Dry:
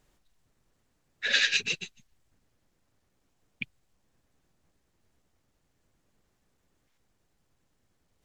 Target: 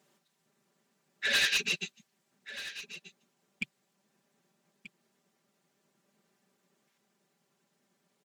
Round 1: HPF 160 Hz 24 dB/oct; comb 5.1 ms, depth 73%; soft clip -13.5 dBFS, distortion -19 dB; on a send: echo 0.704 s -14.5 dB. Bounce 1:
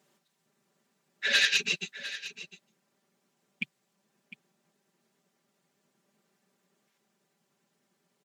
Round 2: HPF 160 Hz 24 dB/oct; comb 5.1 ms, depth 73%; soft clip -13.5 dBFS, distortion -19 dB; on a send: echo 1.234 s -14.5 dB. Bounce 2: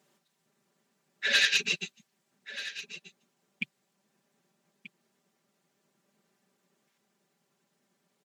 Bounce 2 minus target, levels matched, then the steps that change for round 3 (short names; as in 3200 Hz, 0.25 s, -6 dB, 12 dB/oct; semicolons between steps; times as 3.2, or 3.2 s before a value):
soft clip: distortion -9 dB
change: soft clip -21.5 dBFS, distortion -10 dB